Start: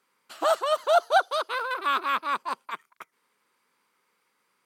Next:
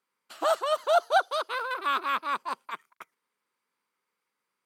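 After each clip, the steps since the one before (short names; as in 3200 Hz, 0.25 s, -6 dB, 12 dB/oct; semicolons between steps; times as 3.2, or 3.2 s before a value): gate -55 dBFS, range -9 dB; gain -2 dB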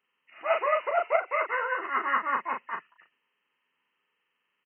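nonlinear frequency compression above 1700 Hz 4:1; auto swell 0.117 s; early reflections 12 ms -4.5 dB, 39 ms -4.5 dB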